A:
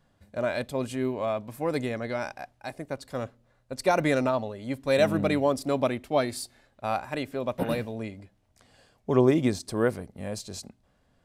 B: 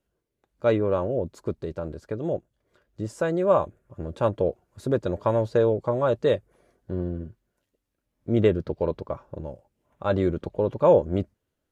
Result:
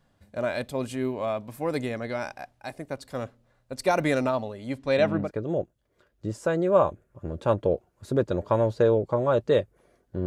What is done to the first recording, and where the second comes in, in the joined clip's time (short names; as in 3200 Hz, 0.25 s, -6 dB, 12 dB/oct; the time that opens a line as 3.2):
A
4.73–5.31 LPF 9400 Hz -> 1400 Hz
5.26 switch to B from 2.01 s, crossfade 0.10 s